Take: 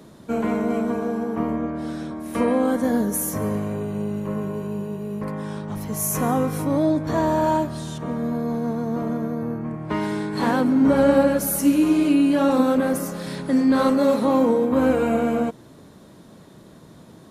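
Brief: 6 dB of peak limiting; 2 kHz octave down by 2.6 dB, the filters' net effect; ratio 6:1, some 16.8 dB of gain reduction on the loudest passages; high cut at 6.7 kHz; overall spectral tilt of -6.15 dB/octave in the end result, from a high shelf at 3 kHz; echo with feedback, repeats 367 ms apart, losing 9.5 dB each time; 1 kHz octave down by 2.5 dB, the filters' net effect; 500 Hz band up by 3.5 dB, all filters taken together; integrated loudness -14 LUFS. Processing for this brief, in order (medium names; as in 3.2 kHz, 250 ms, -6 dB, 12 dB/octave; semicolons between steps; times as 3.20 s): low-pass 6.7 kHz; peaking EQ 500 Hz +5 dB; peaking EQ 1 kHz -5 dB; peaking EQ 2 kHz -4.5 dB; treble shelf 3 kHz +8 dB; compression 6:1, threshold -30 dBFS; peak limiter -26 dBFS; feedback delay 367 ms, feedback 33%, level -9.5 dB; trim +19 dB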